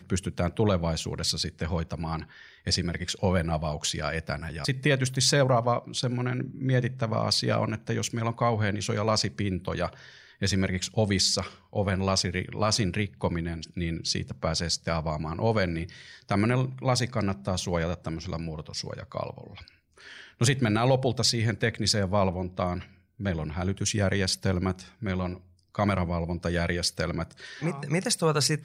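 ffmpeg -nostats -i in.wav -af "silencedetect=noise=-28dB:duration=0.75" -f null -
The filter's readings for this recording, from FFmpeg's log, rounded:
silence_start: 19.38
silence_end: 20.41 | silence_duration: 1.03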